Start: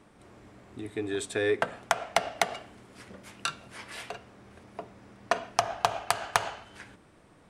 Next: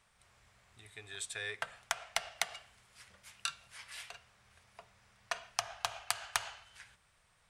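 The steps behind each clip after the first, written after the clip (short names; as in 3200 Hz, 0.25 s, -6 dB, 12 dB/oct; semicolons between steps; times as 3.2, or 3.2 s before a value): passive tone stack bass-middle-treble 10-0-10; gain -2 dB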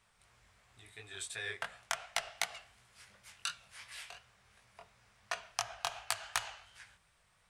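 chorus 2.8 Hz, delay 16.5 ms, depth 6.3 ms; gain +2.5 dB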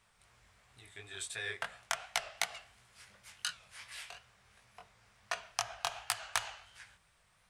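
record warp 45 rpm, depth 100 cents; gain +1 dB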